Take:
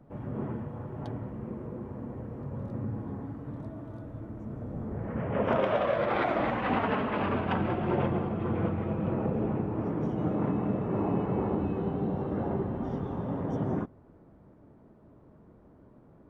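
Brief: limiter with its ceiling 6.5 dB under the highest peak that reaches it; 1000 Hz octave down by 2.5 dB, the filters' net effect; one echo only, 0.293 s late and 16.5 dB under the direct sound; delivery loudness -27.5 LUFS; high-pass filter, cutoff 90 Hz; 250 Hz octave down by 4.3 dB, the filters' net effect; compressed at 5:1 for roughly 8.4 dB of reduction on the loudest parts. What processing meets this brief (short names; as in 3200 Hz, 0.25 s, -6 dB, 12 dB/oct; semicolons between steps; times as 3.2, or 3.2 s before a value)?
HPF 90 Hz; bell 250 Hz -5.5 dB; bell 1000 Hz -3 dB; compressor 5:1, threshold -34 dBFS; limiter -29.5 dBFS; echo 0.293 s -16.5 dB; gain +12.5 dB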